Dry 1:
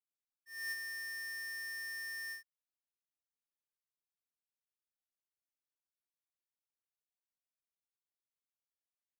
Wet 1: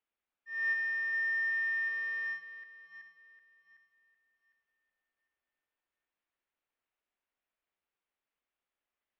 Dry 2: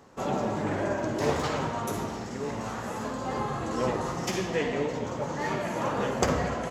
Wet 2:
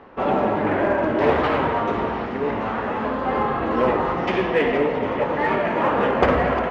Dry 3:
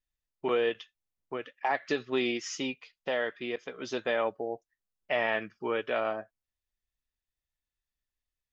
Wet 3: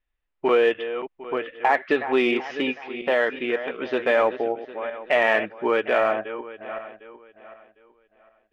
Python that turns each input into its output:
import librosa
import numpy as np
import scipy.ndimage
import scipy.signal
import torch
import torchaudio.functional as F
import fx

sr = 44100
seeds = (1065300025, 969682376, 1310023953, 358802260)

p1 = fx.reverse_delay_fb(x, sr, ms=377, feedback_pct=50, wet_db=-11.5)
p2 = scipy.signal.sosfilt(scipy.signal.butter(4, 2900.0, 'lowpass', fs=sr, output='sos'), p1)
p3 = fx.peak_eq(p2, sr, hz=130.0, db=-9.5, octaves=1.1)
p4 = np.clip(p3, -10.0 ** (-26.0 / 20.0), 10.0 ** (-26.0 / 20.0))
p5 = p3 + (p4 * librosa.db_to_amplitude(-9.5))
y = p5 * librosa.db_to_amplitude(7.5)